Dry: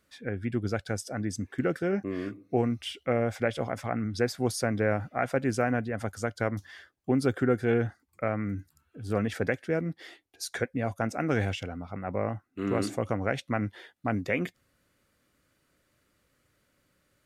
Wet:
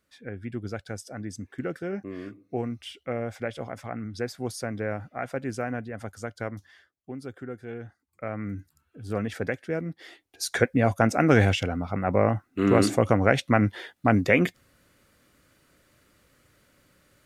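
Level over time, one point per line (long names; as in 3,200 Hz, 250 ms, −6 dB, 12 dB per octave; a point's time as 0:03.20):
0:06.46 −4 dB
0:07.14 −12.5 dB
0:07.79 −12.5 dB
0:08.46 −1 dB
0:09.98 −1 dB
0:10.64 +8.5 dB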